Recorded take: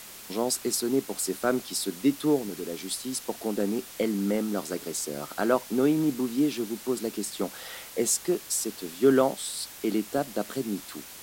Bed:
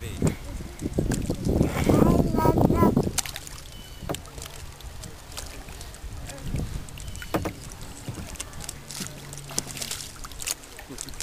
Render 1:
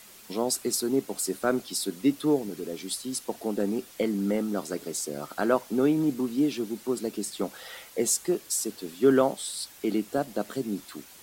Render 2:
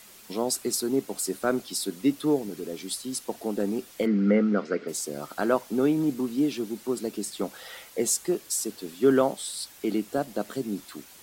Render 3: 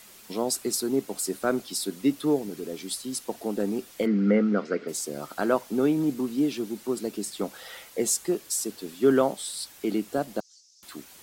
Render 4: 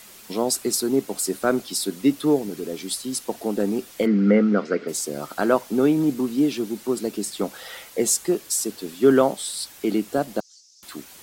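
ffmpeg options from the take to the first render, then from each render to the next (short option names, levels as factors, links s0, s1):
-af "afftdn=nr=7:nf=-45"
-filter_complex "[0:a]asplit=3[s0][s1][s2];[s0]afade=t=out:st=4.05:d=0.02[s3];[s1]highpass=170,equalizer=f=210:t=q:w=4:g=9,equalizer=f=470:t=q:w=4:g=9,equalizer=f=880:t=q:w=4:g=-6,equalizer=f=1400:t=q:w=4:g=10,equalizer=f=2100:t=q:w=4:g=8,equalizer=f=3700:t=q:w=4:g=-6,lowpass=f=4500:w=0.5412,lowpass=f=4500:w=1.3066,afade=t=in:st=4.05:d=0.02,afade=t=out:st=4.87:d=0.02[s4];[s2]afade=t=in:st=4.87:d=0.02[s5];[s3][s4][s5]amix=inputs=3:normalize=0"
-filter_complex "[0:a]asettb=1/sr,asplit=3[s0][s1][s2];[s0]atrim=end=10.404[s3];[s1]atrim=start=10.4:end=10.83,asetpts=PTS-STARTPTS,afade=t=in:d=0.004:c=qsin,afade=t=out:st=0.426:d=0.004:c=qsin,asuperpass=centerf=5700:order=4:qfactor=3.2[s4];[s2]atrim=start=10.826[s5];[s3][s4]acrossfade=d=0.004:c1=hsin:c2=qsin[s6];[s6][s5]acrossfade=d=0.004:c1=qsin:c2=hsin"
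-af "volume=1.68"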